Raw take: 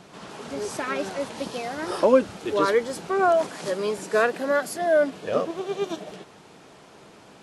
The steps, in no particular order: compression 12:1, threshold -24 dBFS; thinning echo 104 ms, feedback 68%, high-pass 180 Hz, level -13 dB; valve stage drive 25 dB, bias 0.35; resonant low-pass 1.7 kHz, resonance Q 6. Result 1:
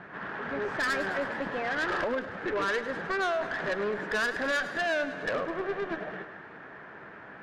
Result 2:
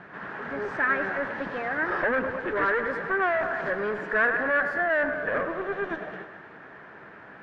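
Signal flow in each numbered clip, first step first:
compression > resonant low-pass > valve stage > thinning echo; thinning echo > valve stage > compression > resonant low-pass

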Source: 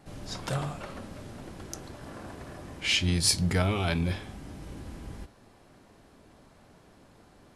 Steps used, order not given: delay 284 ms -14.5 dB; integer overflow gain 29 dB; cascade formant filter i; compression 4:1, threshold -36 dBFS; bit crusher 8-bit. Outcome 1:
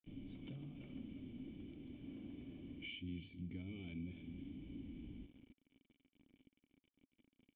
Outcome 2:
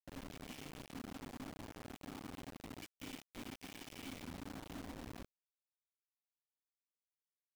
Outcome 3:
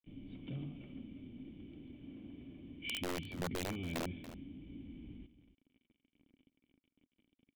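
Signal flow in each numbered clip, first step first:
delay > bit crusher > compression > cascade formant filter > integer overflow; delay > integer overflow > compression > cascade formant filter > bit crusher; bit crusher > cascade formant filter > integer overflow > compression > delay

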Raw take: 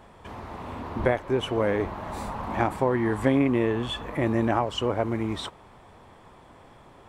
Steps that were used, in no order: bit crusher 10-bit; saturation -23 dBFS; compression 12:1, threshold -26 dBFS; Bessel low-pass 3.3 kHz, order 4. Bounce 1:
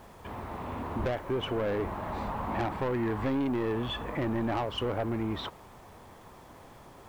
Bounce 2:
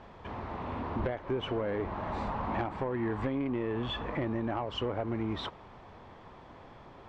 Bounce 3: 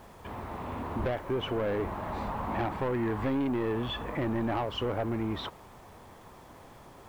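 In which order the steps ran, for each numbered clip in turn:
Bessel low-pass > saturation > bit crusher > compression; bit crusher > compression > saturation > Bessel low-pass; saturation > Bessel low-pass > bit crusher > compression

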